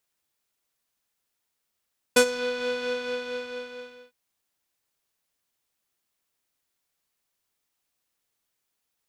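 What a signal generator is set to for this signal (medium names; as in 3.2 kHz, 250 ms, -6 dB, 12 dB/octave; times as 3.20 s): synth patch with tremolo B4, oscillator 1 square, oscillator 2 saw, interval 0 st, oscillator 2 level -3 dB, sub -11 dB, noise -8 dB, filter lowpass, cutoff 3.5 kHz, Q 1.4, filter envelope 1.5 oct, filter decay 0.25 s, filter sustain 10%, attack 7.5 ms, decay 0.08 s, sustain -16 dB, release 1.32 s, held 0.64 s, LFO 4.4 Hz, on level 3 dB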